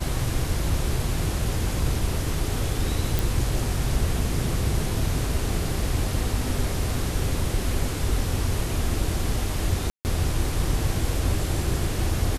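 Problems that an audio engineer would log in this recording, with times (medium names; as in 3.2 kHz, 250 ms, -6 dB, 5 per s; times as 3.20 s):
3.19 s: pop
9.90–10.05 s: dropout 149 ms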